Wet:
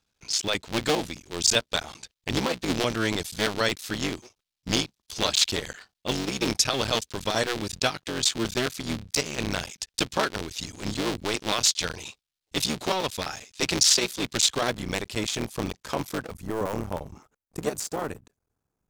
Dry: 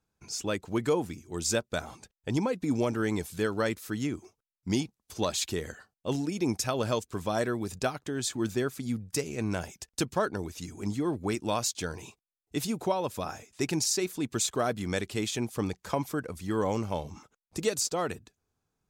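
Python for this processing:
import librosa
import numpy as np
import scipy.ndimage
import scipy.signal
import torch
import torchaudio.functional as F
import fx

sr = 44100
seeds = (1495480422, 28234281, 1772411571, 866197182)

y = fx.cycle_switch(x, sr, every=3, mode='muted')
y = fx.peak_eq(y, sr, hz=3900.0, db=fx.steps((0.0, 13.0), (14.7, 5.5), (16.34, -7.0)), octaves=1.9)
y = y * librosa.db_to_amplitude(2.0)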